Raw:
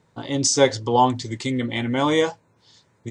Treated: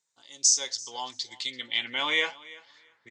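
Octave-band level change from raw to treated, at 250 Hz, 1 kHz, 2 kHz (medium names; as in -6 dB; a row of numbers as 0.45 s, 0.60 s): -24.0 dB, -15.5 dB, -0.5 dB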